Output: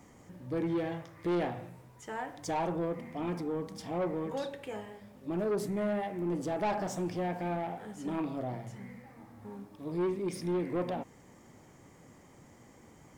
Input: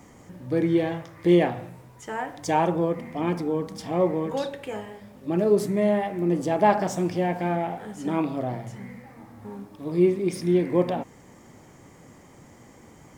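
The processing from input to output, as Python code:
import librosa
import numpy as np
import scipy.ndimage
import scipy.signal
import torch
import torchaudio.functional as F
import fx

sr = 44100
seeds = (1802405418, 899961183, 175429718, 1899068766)

y = 10.0 ** (-20.0 / 20.0) * np.tanh(x / 10.0 ** (-20.0 / 20.0))
y = y * 10.0 ** (-6.5 / 20.0)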